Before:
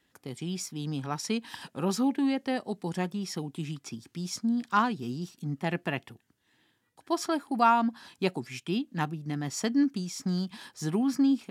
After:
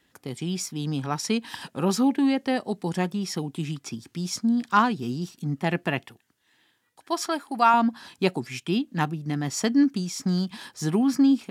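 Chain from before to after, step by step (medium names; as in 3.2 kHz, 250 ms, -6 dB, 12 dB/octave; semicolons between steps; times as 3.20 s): 6.06–7.74 s: bass shelf 420 Hz -9.5 dB; trim +5 dB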